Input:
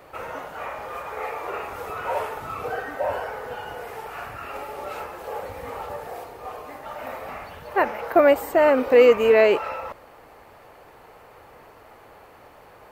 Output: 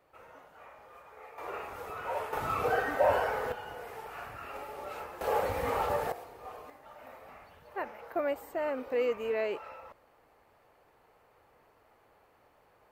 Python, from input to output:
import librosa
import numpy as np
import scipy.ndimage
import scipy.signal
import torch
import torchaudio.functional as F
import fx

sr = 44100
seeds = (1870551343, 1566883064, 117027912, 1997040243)

y = fx.gain(x, sr, db=fx.steps((0.0, -19.5), (1.38, -8.5), (2.33, 0.5), (3.52, -8.0), (5.21, 3.0), (6.12, -9.5), (6.7, -16.0)))